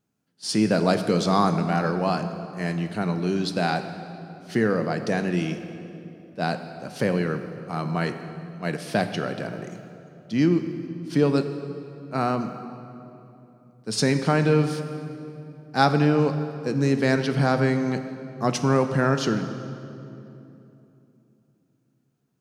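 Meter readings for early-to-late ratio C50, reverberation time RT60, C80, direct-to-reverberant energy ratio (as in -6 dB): 9.0 dB, 3.0 s, 10.0 dB, 8.0 dB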